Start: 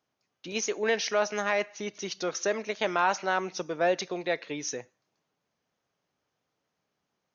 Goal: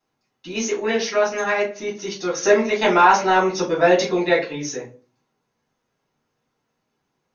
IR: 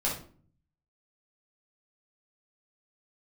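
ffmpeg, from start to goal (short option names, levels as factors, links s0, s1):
-filter_complex "[0:a]asettb=1/sr,asplit=3[s0][s1][s2];[s0]atrim=end=2.374[s3];[s1]atrim=start=2.37:end=4.44,asetpts=PTS-STARTPTS,afade=t=in:d=0.004:c=qsin,afade=t=out:st=2.066:d=0.004:c=qsin,acontrast=36[s4];[s2]atrim=start=4.436[s5];[s3][s4]acrossfade=d=0.004:c1=hsin:c2=qsin[s6];[s6][s5]acrossfade=d=0.004:c1=qsin:c2=hsin[s7];[1:a]atrim=start_sample=2205,asetrate=74970,aresample=44100[s8];[s7][s8]afir=irnorm=-1:irlink=0,volume=1.33"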